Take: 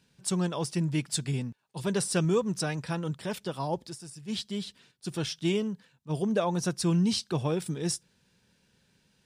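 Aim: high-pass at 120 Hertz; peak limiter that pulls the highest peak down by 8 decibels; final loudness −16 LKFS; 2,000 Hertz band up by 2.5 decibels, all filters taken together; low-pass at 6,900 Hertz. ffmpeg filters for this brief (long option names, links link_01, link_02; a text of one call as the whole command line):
ffmpeg -i in.wav -af "highpass=120,lowpass=6900,equalizer=frequency=2000:width_type=o:gain=3.5,volume=17dB,alimiter=limit=-4.5dB:level=0:latency=1" out.wav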